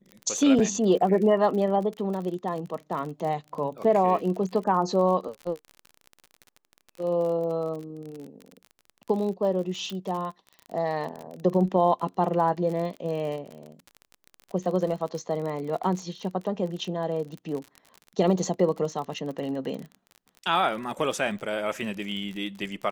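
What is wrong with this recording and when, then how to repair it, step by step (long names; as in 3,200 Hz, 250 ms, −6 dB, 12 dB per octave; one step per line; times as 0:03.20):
surface crackle 41 per second −33 dBFS
0:09.90: click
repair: click removal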